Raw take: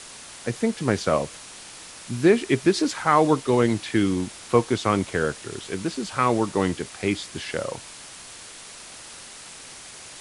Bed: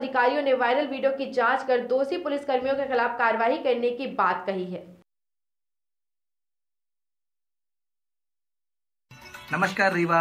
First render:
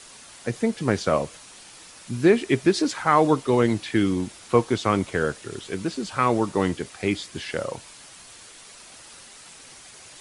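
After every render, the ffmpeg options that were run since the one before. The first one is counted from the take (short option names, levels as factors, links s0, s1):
-af "afftdn=nr=6:nf=-43"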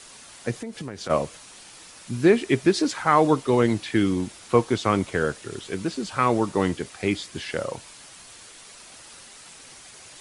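-filter_complex "[0:a]asplit=3[s0][s1][s2];[s0]afade=t=out:st=0.59:d=0.02[s3];[s1]acompressor=threshold=0.0316:ratio=8:attack=3.2:release=140:knee=1:detection=peak,afade=t=in:st=0.59:d=0.02,afade=t=out:st=1.09:d=0.02[s4];[s2]afade=t=in:st=1.09:d=0.02[s5];[s3][s4][s5]amix=inputs=3:normalize=0"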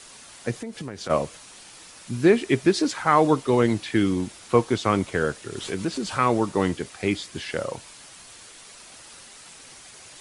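-filter_complex "[0:a]asplit=3[s0][s1][s2];[s0]afade=t=out:st=5.55:d=0.02[s3];[s1]acompressor=mode=upward:threshold=0.0631:ratio=2.5:attack=3.2:release=140:knee=2.83:detection=peak,afade=t=in:st=5.55:d=0.02,afade=t=out:st=6.33:d=0.02[s4];[s2]afade=t=in:st=6.33:d=0.02[s5];[s3][s4][s5]amix=inputs=3:normalize=0"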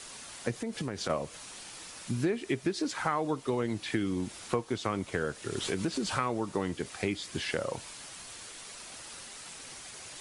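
-af "acompressor=threshold=0.0398:ratio=5"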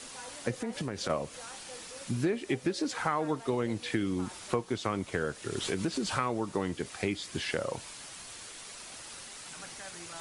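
-filter_complex "[1:a]volume=0.0473[s0];[0:a][s0]amix=inputs=2:normalize=0"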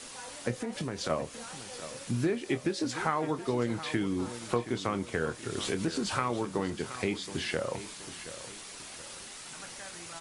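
-filter_complex "[0:a]asplit=2[s0][s1];[s1]adelay=25,volume=0.251[s2];[s0][s2]amix=inputs=2:normalize=0,aecho=1:1:724|1448|2172|2896:0.211|0.0824|0.0321|0.0125"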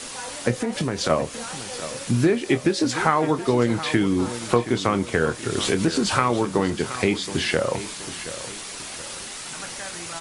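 -af "volume=3.16"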